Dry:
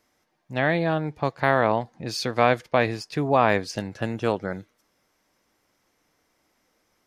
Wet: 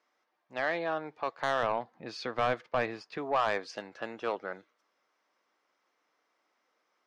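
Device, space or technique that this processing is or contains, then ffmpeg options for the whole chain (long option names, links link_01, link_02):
intercom: -filter_complex "[0:a]highpass=410,lowpass=4500,equalizer=frequency=1200:width_type=o:width=0.51:gain=5,asoftclip=type=tanh:threshold=-14dB,asettb=1/sr,asplit=3[link_01][link_02][link_03];[link_01]atrim=end=1.634[link_04];[link_02]atrim=start=1.63:end=3.18,asetpts=PTS-STARTPTS,afade=type=in:duration=0.004:curve=qsin,afade=type=out:start_time=1.546:duration=0.004:curve=qsin,bass=frequency=250:gain=9,treble=frequency=4000:gain=-5[link_05];[link_03]atrim=start=3.176[link_06];[link_04][link_05]acrossfade=duration=0.004:curve1=hsin:curve2=qsin[link_07];[link_07][link_06]acrossfade=duration=0.004:curve1=qsin:curve2=hsin,volume=-6dB"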